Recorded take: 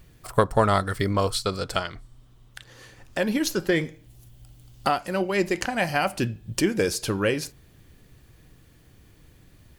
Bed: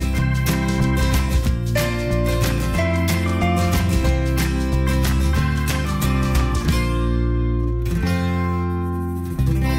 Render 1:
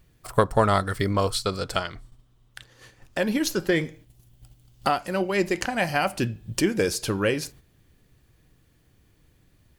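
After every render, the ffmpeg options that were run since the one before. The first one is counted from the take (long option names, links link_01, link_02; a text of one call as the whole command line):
ffmpeg -i in.wav -af "agate=range=-7dB:threshold=-47dB:ratio=16:detection=peak" out.wav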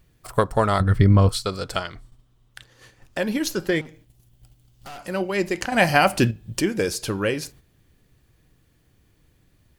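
ffmpeg -i in.wav -filter_complex "[0:a]asettb=1/sr,asplit=3[link_01][link_02][link_03];[link_01]atrim=end=0.804[link_04];[link_02]atrim=start=0.8:end=1.29,asetpts=PTS-STARTPTS,afade=type=in:duration=0.004:curve=qsin,afade=type=out:start_time=0.486:duration=0.004:curve=qsin,bass=frequency=250:gain=14,treble=frequency=4000:gain=-10[link_05];[link_03]atrim=start=1.286[link_06];[link_04][link_05]acrossfade=duration=0.004:curve1=hsin:curve2=qsin[link_07];[link_07][link_06]acrossfade=duration=0.004:curve1=qsin:curve2=hsin,asettb=1/sr,asplit=3[link_08][link_09][link_10];[link_08]atrim=end=3.814[link_11];[link_09]atrim=start=3.81:end=4.99,asetpts=PTS-STARTPTS,afade=type=in:duration=0.004:curve=qsin,afade=type=out:start_time=1.176:duration=0.004:curve=qsin,aeval=exprs='(tanh(70.8*val(0)+0.4)-tanh(0.4))/70.8':channel_layout=same[link_12];[link_10]atrim=start=4.986[link_13];[link_11][link_12]acrossfade=duration=0.004:curve1=hsin:curve2=qsin[link_14];[link_14][link_13]acrossfade=duration=0.004:curve1=qsin:curve2=hsin,asplit=3[link_15][link_16][link_17];[link_15]atrim=end=5.722[link_18];[link_16]atrim=start=5.718:end=6.312,asetpts=PTS-STARTPTS,volume=7dB[link_19];[link_17]atrim=start=6.308[link_20];[link_18][link_19]acrossfade=duration=0.004:curve1=hsin:curve2=hsin[link_21];[link_21][link_20]acrossfade=duration=0.004:curve1=hsin:curve2=hsin" out.wav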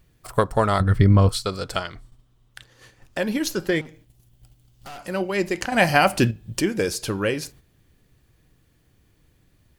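ffmpeg -i in.wav -af anull out.wav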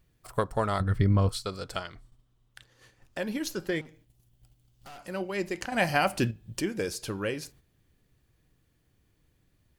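ffmpeg -i in.wav -af "volume=-8dB" out.wav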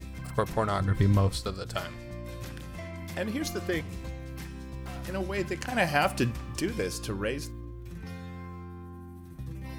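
ffmpeg -i in.wav -i bed.wav -filter_complex "[1:a]volume=-20.5dB[link_01];[0:a][link_01]amix=inputs=2:normalize=0" out.wav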